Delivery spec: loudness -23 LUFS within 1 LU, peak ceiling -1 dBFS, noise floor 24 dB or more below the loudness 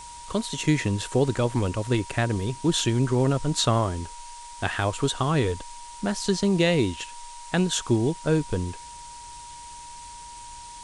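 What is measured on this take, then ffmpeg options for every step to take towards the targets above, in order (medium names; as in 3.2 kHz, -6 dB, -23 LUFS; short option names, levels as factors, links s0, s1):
steady tone 950 Hz; tone level -41 dBFS; noise floor -42 dBFS; noise floor target -49 dBFS; loudness -25.0 LUFS; peak level -8.5 dBFS; loudness target -23.0 LUFS
-> -af "bandreject=f=950:w=30"
-af "afftdn=nr=7:nf=-42"
-af "volume=1.26"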